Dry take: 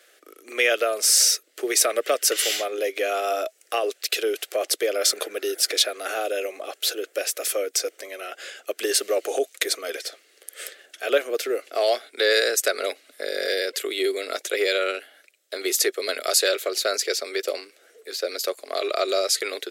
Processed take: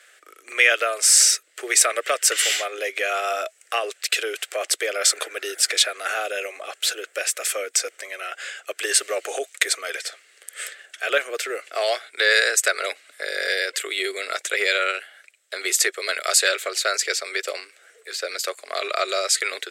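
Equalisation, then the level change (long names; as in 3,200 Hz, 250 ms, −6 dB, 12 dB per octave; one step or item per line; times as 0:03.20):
high-pass filter 350 Hz 12 dB per octave
parametric band 1,800 Hz +13 dB 2.4 octaves
parametric band 8,000 Hz +11.5 dB 0.55 octaves
−6.5 dB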